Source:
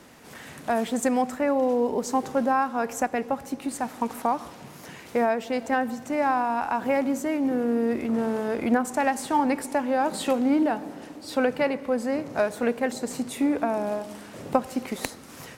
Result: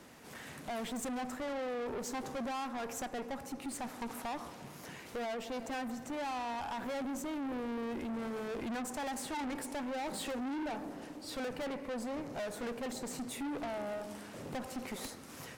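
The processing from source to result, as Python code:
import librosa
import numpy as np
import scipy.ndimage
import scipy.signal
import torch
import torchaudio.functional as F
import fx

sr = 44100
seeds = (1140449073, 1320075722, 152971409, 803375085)

y = fx.tube_stage(x, sr, drive_db=32.0, bias=0.35)
y = y * 10.0 ** (-4.0 / 20.0)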